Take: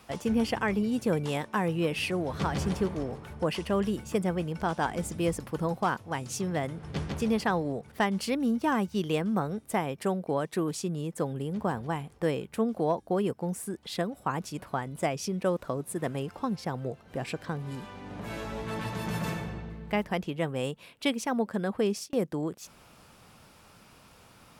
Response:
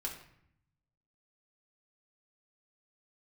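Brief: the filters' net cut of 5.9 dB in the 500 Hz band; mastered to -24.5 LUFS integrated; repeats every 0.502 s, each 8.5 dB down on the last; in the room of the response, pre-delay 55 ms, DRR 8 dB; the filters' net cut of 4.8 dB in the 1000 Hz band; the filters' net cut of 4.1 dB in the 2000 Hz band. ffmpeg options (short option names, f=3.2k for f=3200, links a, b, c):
-filter_complex "[0:a]equalizer=f=500:t=o:g=-6.5,equalizer=f=1k:t=o:g=-3,equalizer=f=2k:t=o:g=-4,aecho=1:1:502|1004|1506|2008:0.376|0.143|0.0543|0.0206,asplit=2[a][b];[1:a]atrim=start_sample=2205,adelay=55[c];[b][c]afir=irnorm=-1:irlink=0,volume=-8.5dB[d];[a][d]amix=inputs=2:normalize=0,volume=8dB"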